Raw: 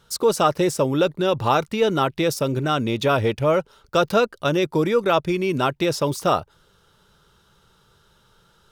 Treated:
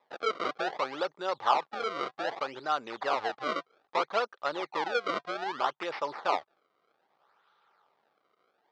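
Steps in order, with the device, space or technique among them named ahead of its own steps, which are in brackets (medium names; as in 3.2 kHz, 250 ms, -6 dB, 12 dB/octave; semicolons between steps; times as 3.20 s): circuit-bent sampling toy (decimation with a swept rate 29×, swing 160% 0.63 Hz; cabinet simulation 590–4400 Hz, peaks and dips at 810 Hz +7 dB, 1.2 kHz +6 dB, 2.7 kHz -4 dB); trim -9 dB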